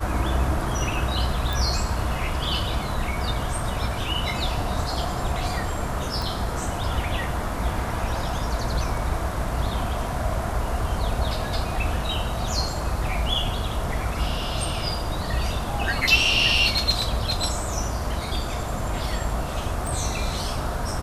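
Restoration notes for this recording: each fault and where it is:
1.53 pop
6.22 pop
19.87 pop

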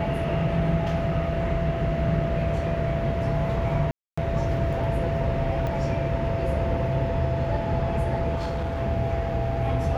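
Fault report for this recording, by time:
tone 670 Hz -29 dBFS
3.91–4.17 gap 0.265 s
5.67 pop -18 dBFS
8.35–8.81 clipped -24.5 dBFS

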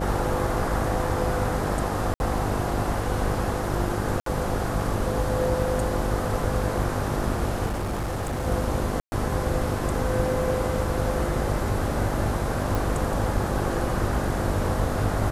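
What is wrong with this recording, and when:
buzz 50 Hz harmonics 13 -30 dBFS
2.14–2.2 gap 61 ms
4.2–4.26 gap 63 ms
7.66–8.47 clipped -24.5 dBFS
9–9.12 gap 0.12 s
12.75 pop

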